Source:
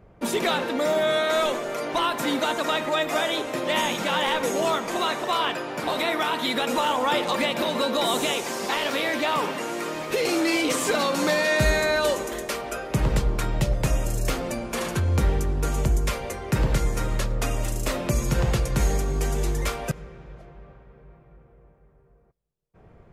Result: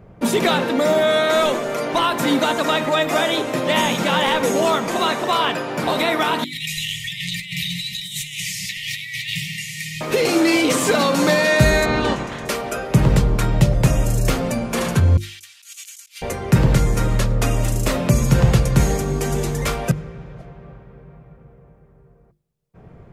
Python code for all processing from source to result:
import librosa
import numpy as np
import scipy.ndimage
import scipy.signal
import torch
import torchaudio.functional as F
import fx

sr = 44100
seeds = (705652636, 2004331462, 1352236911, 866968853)

y = fx.chain(x, sr, fx.brickwall_bandstop(low_hz=180.0, high_hz=1800.0),
    fx.echo_single(ms=104, db=-11.5),
    fx.over_compress(threshold_db=-32.0, ratio=-0.5), at=(6.44, 10.01))
y = fx.spec_clip(y, sr, under_db=19, at=(11.84, 12.45), fade=0.02)
y = fx.spacing_loss(y, sr, db_at_10k=24, at=(11.84, 12.45), fade=0.02)
y = fx.chain(y, sr, fx.cheby2_highpass(hz=450.0, order=4, stop_db=80),
    fx.over_compress(threshold_db=-44.0, ratio=-0.5), at=(15.17, 16.22))
y = fx.peak_eq(y, sr, hz=150.0, db=7.0, octaves=1.8)
y = fx.hum_notches(y, sr, base_hz=50, count=7)
y = y * 10.0 ** (5.0 / 20.0)